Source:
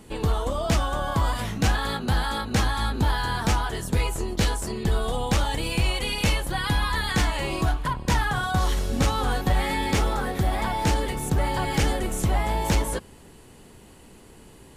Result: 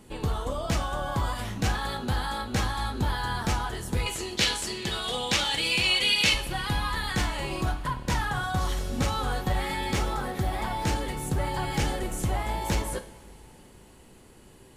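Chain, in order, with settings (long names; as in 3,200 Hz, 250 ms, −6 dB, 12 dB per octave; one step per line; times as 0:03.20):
0:04.06–0:06.34: meter weighting curve D
coupled-rooms reverb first 0.47 s, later 4.2 s, from −20 dB, DRR 8 dB
level −4.5 dB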